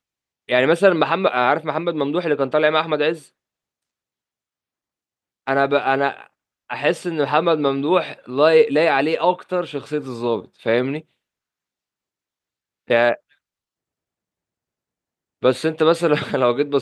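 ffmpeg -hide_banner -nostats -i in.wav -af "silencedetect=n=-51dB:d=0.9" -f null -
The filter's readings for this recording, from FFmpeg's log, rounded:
silence_start: 3.29
silence_end: 5.47 | silence_duration: 2.18
silence_start: 11.03
silence_end: 12.88 | silence_duration: 1.85
silence_start: 13.33
silence_end: 15.42 | silence_duration: 2.09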